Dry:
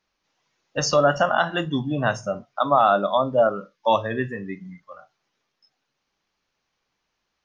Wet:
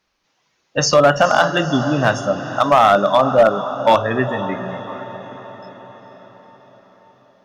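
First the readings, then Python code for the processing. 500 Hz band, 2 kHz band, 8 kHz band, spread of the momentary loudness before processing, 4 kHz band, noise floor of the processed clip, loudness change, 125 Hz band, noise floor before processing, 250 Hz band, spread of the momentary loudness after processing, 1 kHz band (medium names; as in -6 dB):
+6.5 dB, +7.0 dB, no reading, 14 LU, +7.0 dB, -67 dBFS, +6.0 dB, +6.5 dB, -78 dBFS, +7.0 dB, 18 LU, +6.0 dB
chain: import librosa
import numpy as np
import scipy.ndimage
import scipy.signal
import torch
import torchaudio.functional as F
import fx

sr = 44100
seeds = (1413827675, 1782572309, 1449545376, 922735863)

y = fx.echo_diffused(x, sr, ms=471, feedback_pct=57, wet_db=-12.0)
y = fx.clip_asym(y, sr, top_db=-12.5, bottom_db=-10.5)
y = F.gain(torch.from_numpy(y), 6.5).numpy()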